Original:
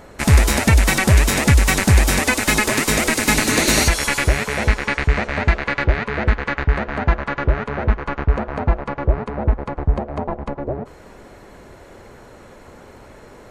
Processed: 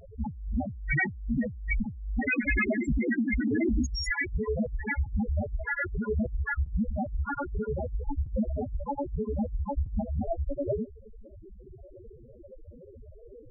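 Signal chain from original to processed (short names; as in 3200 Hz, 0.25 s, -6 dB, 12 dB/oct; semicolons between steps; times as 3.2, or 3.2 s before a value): loudest bins only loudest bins 2; negative-ratio compressor -28 dBFS, ratio -1; gain -2.5 dB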